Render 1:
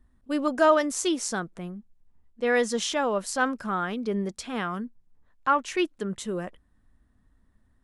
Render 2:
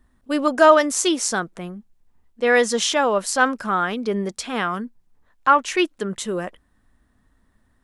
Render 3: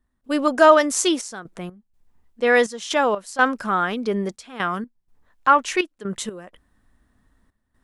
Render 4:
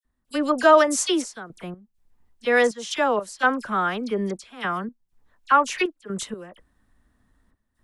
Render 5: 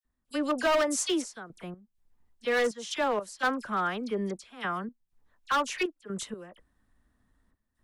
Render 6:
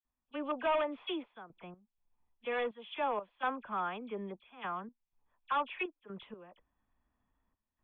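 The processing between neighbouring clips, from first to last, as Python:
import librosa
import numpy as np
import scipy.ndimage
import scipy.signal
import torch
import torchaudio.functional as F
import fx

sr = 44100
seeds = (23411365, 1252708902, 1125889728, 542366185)

y1 = fx.low_shelf(x, sr, hz=270.0, db=-7.5)
y1 = y1 * 10.0 ** (8.0 / 20.0)
y2 = fx.step_gate(y1, sr, bpm=62, pattern='.xxxx.x.xxx.x', floor_db=-12.0, edge_ms=4.5)
y3 = fx.dispersion(y2, sr, late='lows', ms=48.0, hz=2300.0)
y3 = y3 * 10.0 ** (-2.0 / 20.0)
y4 = np.clip(y3, -10.0 ** (-16.0 / 20.0), 10.0 ** (-16.0 / 20.0))
y4 = y4 * 10.0 ** (-5.5 / 20.0)
y5 = scipy.signal.sosfilt(scipy.signal.cheby1(6, 9, 3500.0, 'lowpass', fs=sr, output='sos'), y4)
y5 = y5 * 10.0 ** (-2.0 / 20.0)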